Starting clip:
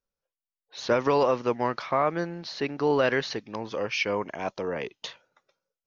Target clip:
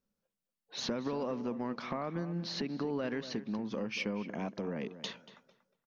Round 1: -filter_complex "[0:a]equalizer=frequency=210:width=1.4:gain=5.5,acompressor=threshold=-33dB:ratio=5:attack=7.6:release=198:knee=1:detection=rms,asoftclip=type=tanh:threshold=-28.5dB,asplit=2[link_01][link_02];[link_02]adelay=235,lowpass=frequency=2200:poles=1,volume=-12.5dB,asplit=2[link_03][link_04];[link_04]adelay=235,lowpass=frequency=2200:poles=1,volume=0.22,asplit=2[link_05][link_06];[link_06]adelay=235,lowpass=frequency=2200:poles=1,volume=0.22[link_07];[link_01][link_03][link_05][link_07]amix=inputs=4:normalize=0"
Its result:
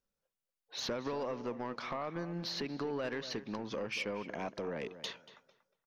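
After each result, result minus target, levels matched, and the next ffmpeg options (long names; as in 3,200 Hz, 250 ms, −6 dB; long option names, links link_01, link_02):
soft clipping: distortion +11 dB; 250 Hz band −3.5 dB
-filter_complex "[0:a]equalizer=frequency=210:width=1.4:gain=5.5,acompressor=threshold=-33dB:ratio=5:attack=7.6:release=198:knee=1:detection=rms,asoftclip=type=tanh:threshold=-21dB,asplit=2[link_01][link_02];[link_02]adelay=235,lowpass=frequency=2200:poles=1,volume=-12.5dB,asplit=2[link_03][link_04];[link_04]adelay=235,lowpass=frequency=2200:poles=1,volume=0.22,asplit=2[link_05][link_06];[link_06]adelay=235,lowpass=frequency=2200:poles=1,volume=0.22[link_07];[link_01][link_03][link_05][link_07]amix=inputs=4:normalize=0"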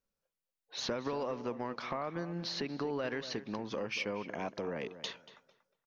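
250 Hz band −3.5 dB
-filter_complex "[0:a]equalizer=frequency=210:width=1.4:gain=17,acompressor=threshold=-33dB:ratio=5:attack=7.6:release=198:knee=1:detection=rms,asoftclip=type=tanh:threshold=-21dB,asplit=2[link_01][link_02];[link_02]adelay=235,lowpass=frequency=2200:poles=1,volume=-12.5dB,asplit=2[link_03][link_04];[link_04]adelay=235,lowpass=frequency=2200:poles=1,volume=0.22,asplit=2[link_05][link_06];[link_06]adelay=235,lowpass=frequency=2200:poles=1,volume=0.22[link_07];[link_01][link_03][link_05][link_07]amix=inputs=4:normalize=0"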